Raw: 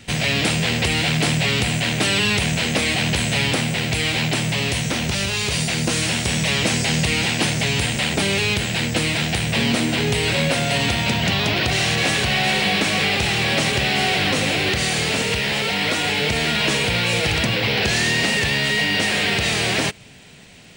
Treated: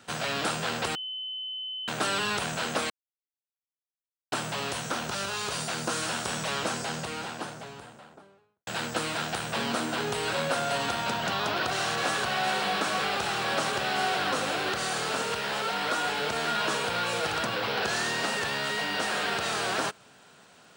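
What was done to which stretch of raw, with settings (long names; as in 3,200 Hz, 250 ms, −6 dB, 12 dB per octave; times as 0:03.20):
0:00.95–0:01.88: beep over 3,040 Hz −21 dBFS
0:02.90–0:04.32: silence
0:06.28–0:08.67: fade out and dull
whole clip: high-pass filter 740 Hz 6 dB per octave; high shelf with overshoot 1,700 Hz −6.5 dB, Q 3; level −2.5 dB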